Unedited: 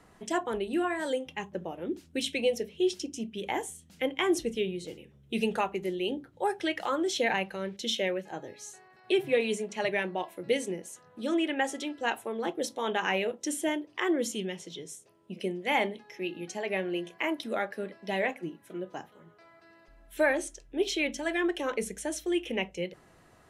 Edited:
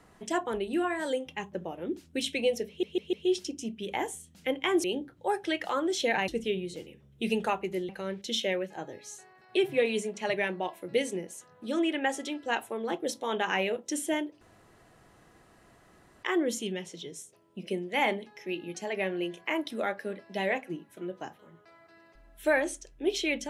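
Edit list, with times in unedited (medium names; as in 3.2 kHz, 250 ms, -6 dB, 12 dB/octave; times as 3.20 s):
2.68 s: stutter 0.15 s, 4 plays
6.00–7.44 s: move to 4.39 s
13.96 s: insert room tone 1.82 s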